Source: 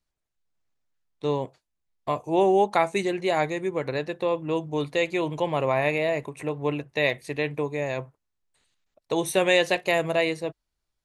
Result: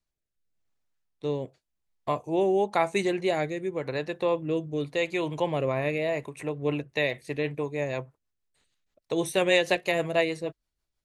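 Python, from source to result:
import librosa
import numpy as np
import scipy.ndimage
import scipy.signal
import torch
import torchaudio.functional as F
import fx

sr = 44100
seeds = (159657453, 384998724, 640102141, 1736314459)

y = fx.rotary_switch(x, sr, hz=0.9, then_hz=6.3, switch_at_s=6.25)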